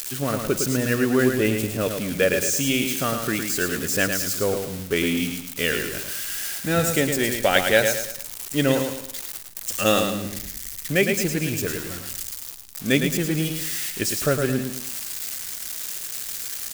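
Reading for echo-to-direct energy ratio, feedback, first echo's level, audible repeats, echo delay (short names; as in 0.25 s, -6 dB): -5.5 dB, 37%, -6.0 dB, 4, 0.109 s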